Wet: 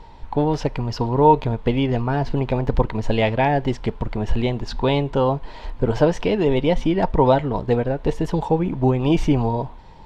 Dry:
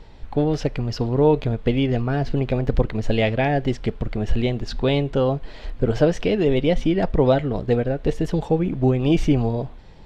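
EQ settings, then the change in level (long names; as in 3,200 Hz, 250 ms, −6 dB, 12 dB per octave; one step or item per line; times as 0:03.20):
parametric band 940 Hz +14 dB 0.33 octaves
0.0 dB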